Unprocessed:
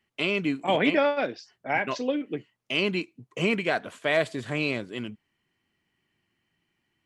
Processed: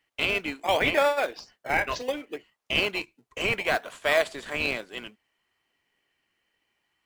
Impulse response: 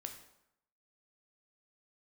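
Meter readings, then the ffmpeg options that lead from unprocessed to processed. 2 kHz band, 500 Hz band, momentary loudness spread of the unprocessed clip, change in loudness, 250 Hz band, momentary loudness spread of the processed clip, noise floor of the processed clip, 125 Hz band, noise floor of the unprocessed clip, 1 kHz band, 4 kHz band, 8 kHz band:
+2.0 dB, -0.5 dB, 13 LU, +0.5 dB, -8.5 dB, 17 LU, -78 dBFS, -6.0 dB, -78 dBFS, +1.5 dB, +2.5 dB, +6.0 dB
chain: -filter_complex "[0:a]highpass=620,asplit=2[a][b];[b]acrusher=samples=27:mix=1:aa=0.000001:lfo=1:lforange=27:lforate=0.68,volume=-9.5dB[c];[a][c]amix=inputs=2:normalize=0,volume=2dB"

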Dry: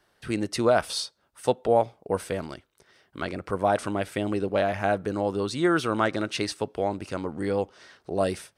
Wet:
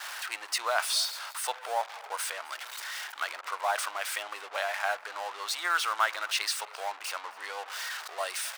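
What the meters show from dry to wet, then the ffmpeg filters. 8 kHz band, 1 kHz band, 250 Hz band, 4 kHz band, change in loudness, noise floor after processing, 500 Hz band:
+5.5 dB, -2.5 dB, under -30 dB, +3.5 dB, -4.5 dB, -48 dBFS, -13.5 dB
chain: -af "aeval=exprs='val(0)+0.5*0.0299*sgn(val(0))':c=same,anlmdn=2.51,highpass=f=880:w=0.5412,highpass=f=880:w=1.3066,aecho=1:1:263:0.075"

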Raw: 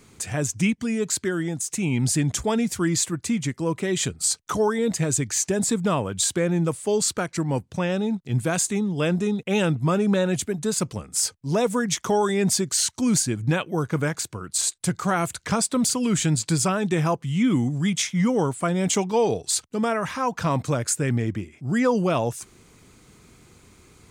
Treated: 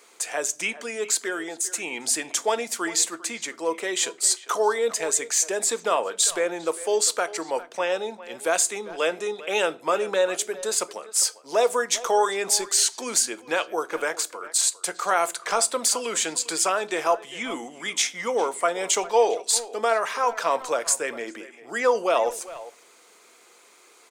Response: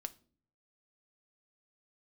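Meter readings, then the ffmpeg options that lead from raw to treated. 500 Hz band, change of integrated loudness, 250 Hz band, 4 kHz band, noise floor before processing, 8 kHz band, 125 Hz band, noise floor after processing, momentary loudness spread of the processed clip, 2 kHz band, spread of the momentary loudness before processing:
+1.0 dB, -0.5 dB, -14.5 dB, +2.5 dB, -56 dBFS, +2.0 dB, under -25 dB, -54 dBFS, 8 LU, +2.5 dB, 5 LU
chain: -filter_complex "[0:a]highpass=f=480:w=0.5412,highpass=f=480:w=1.3066,asplit=2[a][b];[b]adelay=400,highpass=300,lowpass=3.4k,asoftclip=type=hard:threshold=-19dB,volume=-16dB[c];[a][c]amix=inputs=2:normalize=0,asplit=2[d][e];[1:a]atrim=start_sample=2205,lowshelf=f=380:g=7[f];[e][f]afir=irnorm=-1:irlink=0,volume=10dB[g];[d][g]amix=inputs=2:normalize=0,volume=-8dB"

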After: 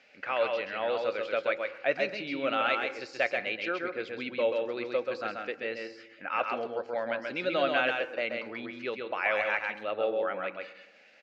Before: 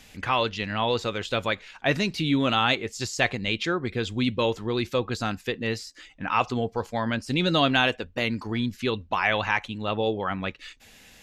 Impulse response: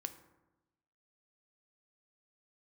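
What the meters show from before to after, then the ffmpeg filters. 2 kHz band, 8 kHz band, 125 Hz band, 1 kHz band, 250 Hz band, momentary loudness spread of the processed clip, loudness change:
-3.5 dB, under -20 dB, -23.0 dB, -6.0 dB, -12.5 dB, 9 LU, -5.0 dB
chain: -filter_complex "[0:a]highpass=380,equalizer=f=570:t=q:w=4:g=10,equalizer=f=1k:t=q:w=4:g=-7,equalizer=f=1.4k:t=q:w=4:g=5,equalizer=f=2.3k:t=q:w=4:g=5,equalizer=f=3.5k:t=q:w=4:g=-9,lowpass=f=4.5k:w=0.5412,lowpass=f=4.5k:w=1.3066,asplit=2[a][b];[b]adelay=120,highpass=300,lowpass=3.4k,asoftclip=type=hard:threshold=-15.5dB,volume=-23dB[c];[a][c]amix=inputs=2:normalize=0,asplit=2[d][e];[1:a]atrim=start_sample=2205,adelay=132[f];[e][f]afir=irnorm=-1:irlink=0,volume=-1dB[g];[d][g]amix=inputs=2:normalize=0,volume=-7.5dB"

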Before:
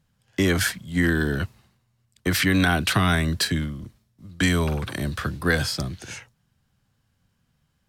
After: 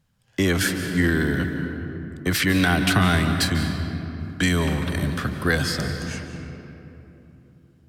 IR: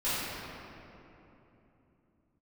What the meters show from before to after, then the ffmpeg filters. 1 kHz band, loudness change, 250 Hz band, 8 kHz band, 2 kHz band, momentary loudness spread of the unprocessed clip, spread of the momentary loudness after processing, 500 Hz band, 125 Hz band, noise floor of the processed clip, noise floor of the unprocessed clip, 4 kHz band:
+1.0 dB, +0.5 dB, +2.0 dB, +0.5 dB, +1.0 dB, 13 LU, 14 LU, +1.0 dB, +2.0 dB, -59 dBFS, -71 dBFS, +0.5 dB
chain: -filter_complex "[0:a]asplit=2[a][b];[1:a]atrim=start_sample=2205,adelay=142[c];[b][c]afir=irnorm=-1:irlink=0,volume=-16.5dB[d];[a][d]amix=inputs=2:normalize=0"

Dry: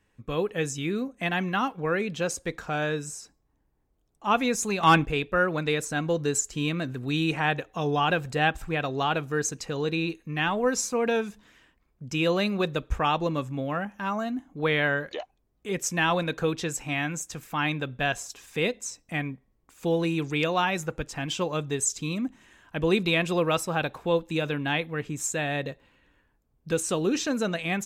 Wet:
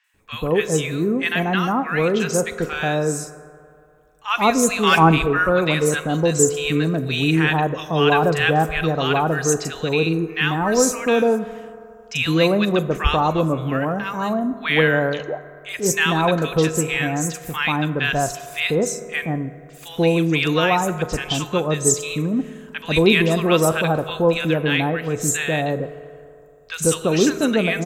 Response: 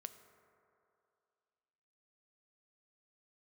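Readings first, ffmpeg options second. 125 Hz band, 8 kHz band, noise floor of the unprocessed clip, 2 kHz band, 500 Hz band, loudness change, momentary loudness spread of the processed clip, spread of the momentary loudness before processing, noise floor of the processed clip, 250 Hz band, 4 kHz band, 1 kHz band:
+9.0 dB, +8.0 dB, -71 dBFS, +7.0 dB, +8.5 dB, +8.0 dB, 9 LU, 9 LU, -45 dBFS, +8.5 dB, +8.0 dB, +6.5 dB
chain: -filter_complex "[0:a]acrossover=split=1200|5700[a][b][c];[c]adelay=40[d];[a]adelay=140[e];[e][b][d]amix=inputs=3:normalize=0,asplit=2[f][g];[1:a]atrim=start_sample=2205,highshelf=f=10k:g=8.5[h];[g][h]afir=irnorm=-1:irlink=0,volume=12.5dB[i];[f][i]amix=inputs=2:normalize=0,volume=-2dB"

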